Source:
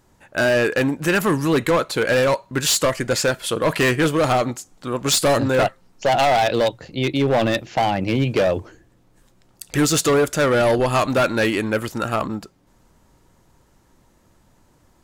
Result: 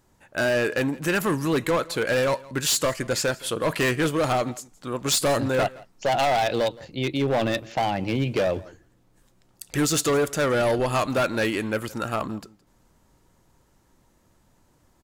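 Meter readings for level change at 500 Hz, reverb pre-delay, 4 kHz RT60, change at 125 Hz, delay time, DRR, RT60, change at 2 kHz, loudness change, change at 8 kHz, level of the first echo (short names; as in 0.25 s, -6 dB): -5.0 dB, none, none, -5.0 dB, 0.167 s, none, none, -5.0 dB, -5.0 dB, -3.5 dB, -22.0 dB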